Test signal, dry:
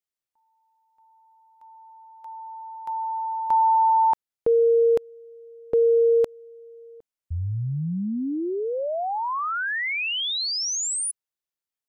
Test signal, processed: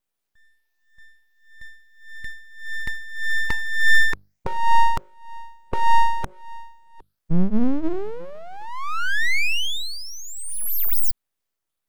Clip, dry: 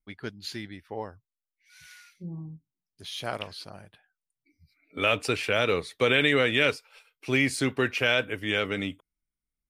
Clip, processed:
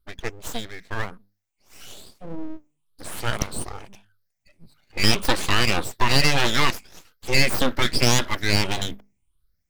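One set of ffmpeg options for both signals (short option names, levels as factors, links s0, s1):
-filter_complex "[0:a]afftfilt=real='re*pow(10,20/40*sin(2*PI*(0.62*log(max(b,1)*sr/1024/100)/log(2)-(1.7)*(pts-256)/sr)))':imag='im*pow(10,20/40*sin(2*PI*(0.62*log(max(b,1)*sr/1024/100)/log(2)-(1.7)*(pts-256)/sr)))':win_size=1024:overlap=0.75,asubboost=boost=4:cutoff=110,asplit=2[s0][s1];[s1]acompressor=threshold=0.0316:ratio=6:attack=50:release=27:detection=peak,volume=1.33[s2];[s0][s2]amix=inputs=2:normalize=0,bandreject=f=50:t=h:w=6,bandreject=f=100:t=h:w=6,bandreject=f=150:t=h:w=6,aeval=exprs='abs(val(0))':c=same,volume=0.841"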